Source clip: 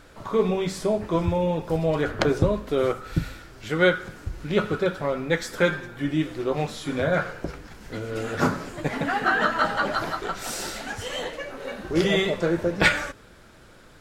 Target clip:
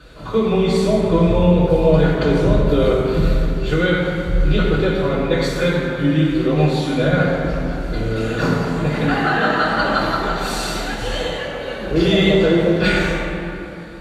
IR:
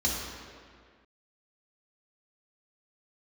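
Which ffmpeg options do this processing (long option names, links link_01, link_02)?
-filter_complex "[0:a]alimiter=limit=-14.5dB:level=0:latency=1:release=59[link_01];[1:a]atrim=start_sample=2205,asetrate=28224,aresample=44100[link_02];[link_01][link_02]afir=irnorm=-1:irlink=0,volume=-5.5dB"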